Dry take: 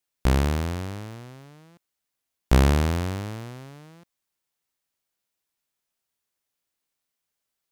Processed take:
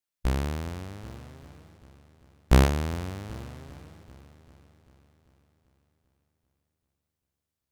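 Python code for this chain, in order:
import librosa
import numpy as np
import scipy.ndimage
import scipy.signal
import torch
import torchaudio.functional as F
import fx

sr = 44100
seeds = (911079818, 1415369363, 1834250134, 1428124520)

y = fx.echo_heads(x, sr, ms=392, heads='first and second', feedback_pct=44, wet_db=-19)
y = fx.noise_reduce_blind(y, sr, reduce_db=7)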